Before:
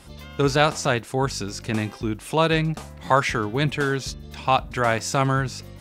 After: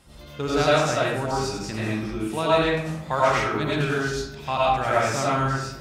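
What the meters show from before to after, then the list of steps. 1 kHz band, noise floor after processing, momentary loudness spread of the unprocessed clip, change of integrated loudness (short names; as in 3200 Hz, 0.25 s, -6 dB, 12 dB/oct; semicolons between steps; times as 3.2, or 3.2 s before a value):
0.0 dB, -42 dBFS, 10 LU, -0.5 dB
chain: digital reverb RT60 0.84 s, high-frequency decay 0.65×, pre-delay 55 ms, DRR -7.5 dB; gain -8.5 dB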